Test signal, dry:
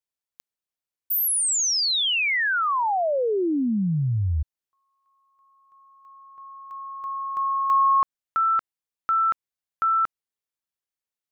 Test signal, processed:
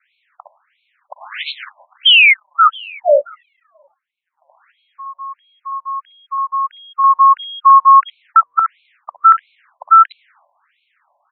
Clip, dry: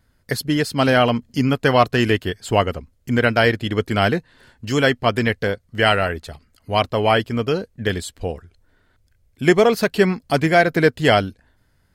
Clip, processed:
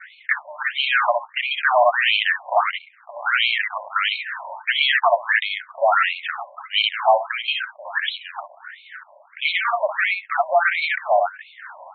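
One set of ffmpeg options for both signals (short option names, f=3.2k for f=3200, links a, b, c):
-filter_complex "[0:a]acrossover=split=350|2500[a][b][c];[b]asoftclip=type=tanh:threshold=-20dB[d];[a][d][c]amix=inputs=3:normalize=0,bass=f=250:g=-8,treble=f=4k:g=-3,aecho=1:1:58|68:0.266|0.266,areverse,acompressor=mode=upward:threshold=-33dB:ratio=2.5:attack=0.23:release=25:knee=2.83:detection=peak,areverse,agate=range=-8dB:threshold=-50dB:ratio=3:release=226:detection=rms,adynamicequalizer=threshold=0.0158:dfrequency=500:dqfactor=1.5:tfrequency=500:tqfactor=1.5:attack=5:release=100:ratio=0.375:range=3:mode=cutabove:tftype=bell,volume=11.5dB,asoftclip=hard,volume=-11.5dB,adynamicsmooth=sensitivity=6:basefreq=2.1k,alimiter=level_in=23dB:limit=-1dB:release=50:level=0:latency=1,afftfilt=real='re*between(b*sr/1024,740*pow(3100/740,0.5+0.5*sin(2*PI*1.5*pts/sr))/1.41,740*pow(3100/740,0.5+0.5*sin(2*PI*1.5*pts/sr))*1.41)':imag='im*between(b*sr/1024,740*pow(3100/740,0.5+0.5*sin(2*PI*1.5*pts/sr))/1.41,740*pow(3100/740,0.5+0.5*sin(2*PI*1.5*pts/sr))*1.41)':win_size=1024:overlap=0.75,volume=-1.5dB"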